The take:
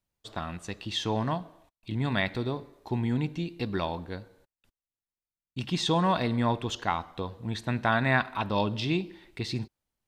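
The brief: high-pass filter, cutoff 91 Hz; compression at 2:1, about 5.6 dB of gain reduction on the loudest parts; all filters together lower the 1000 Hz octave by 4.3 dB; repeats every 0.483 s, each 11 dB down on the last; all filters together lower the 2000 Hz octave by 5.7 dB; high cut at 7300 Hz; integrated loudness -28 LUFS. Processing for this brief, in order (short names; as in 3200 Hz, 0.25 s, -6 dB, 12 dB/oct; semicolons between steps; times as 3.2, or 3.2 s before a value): HPF 91 Hz; LPF 7300 Hz; bell 1000 Hz -4 dB; bell 2000 Hz -6 dB; compressor 2:1, threshold -33 dBFS; feedback echo 0.483 s, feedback 28%, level -11 dB; gain +8 dB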